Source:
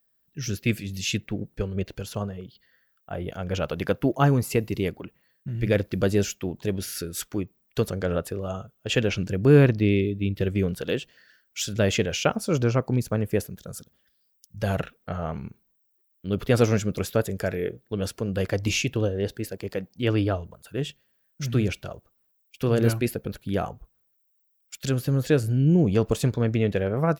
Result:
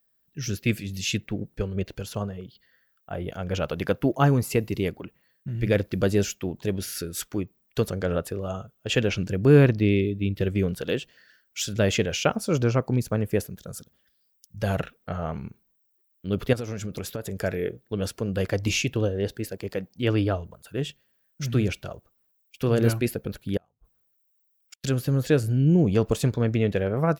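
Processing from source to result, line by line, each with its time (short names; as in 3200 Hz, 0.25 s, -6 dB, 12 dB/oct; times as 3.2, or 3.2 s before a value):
16.53–17.39 compressor 16:1, threshold -27 dBFS
23.57–24.84 flipped gate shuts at -31 dBFS, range -36 dB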